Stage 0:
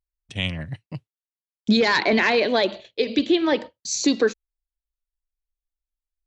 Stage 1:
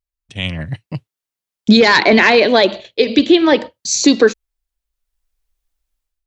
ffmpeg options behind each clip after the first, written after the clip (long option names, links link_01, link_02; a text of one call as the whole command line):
ffmpeg -i in.wav -af "dynaudnorm=framelen=350:gausssize=3:maxgain=15dB" out.wav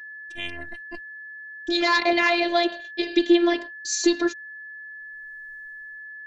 ffmpeg -i in.wav -af "dynaudnorm=framelen=230:gausssize=7:maxgain=15dB,aeval=exprs='val(0)+0.0316*sin(2*PI*1700*n/s)':channel_layout=same,afftfilt=real='hypot(re,im)*cos(PI*b)':imag='0':win_size=512:overlap=0.75,volume=-6.5dB" out.wav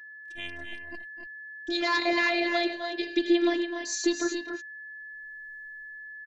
ffmpeg -i in.wav -af "aecho=1:1:256|284:0.266|0.422,volume=-6dB" out.wav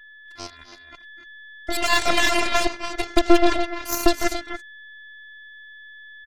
ffmpeg -i in.wav -af "aeval=exprs='0.282*(cos(1*acos(clip(val(0)/0.282,-1,1)))-cos(1*PI/2))+0.0891*(cos(4*acos(clip(val(0)/0.282,-1,1)))-cos(4*PI/2))+0.0224*(cos(7*acos(clip(val(0)/0.282,-1,1)))-cos(7*PI/2))+0.0355*(cos(8*acos(clip(val(0)/0.282,-1,1)))-cos(8*PI/2))':channel_layout=same,volume=6dB" out.wav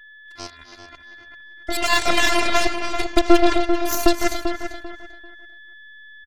ffmpeg -i in.wav -filter_complex "[0:a]asplit=2[link_01][link_02];[link_02]adelay=392,lowpass=frequency=3100:poles=1,volume=-8dB,asplit=2[link_03][link_04];[link_04]adelay=392,lowpass=frequency=3100:poles=1,volume=0.25,asplit=2[link_05][link_06];[link_06]adelay=392,lowpass=frequency=3100:poles=1,volume=0.25[link_07];[link_01][link_03][link_05][link_07]amix=inputs=4:normalize=0,volume=1dB" out.wav